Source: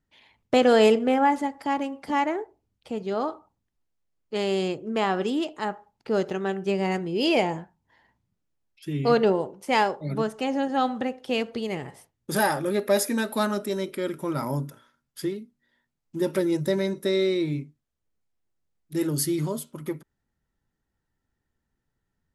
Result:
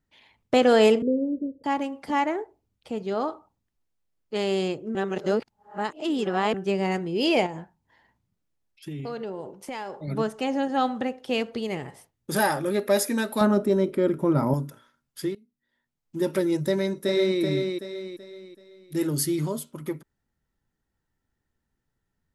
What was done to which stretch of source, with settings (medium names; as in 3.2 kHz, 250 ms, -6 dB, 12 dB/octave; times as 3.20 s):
1.02–1.64 s: steep low-pass 530 Hz 72 dB/octave
4.95–6.54 s: reverse
7.46–10.08 s: compression, threshold -31 dBFS
13.41–14.54 s: tilt shelf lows +8 dB, about 1.4 kHz
15.35–16.20 s: fade in, from -21 dB
16.70–17.40 s: echo throw 380 ms, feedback 40%, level -4.5 dB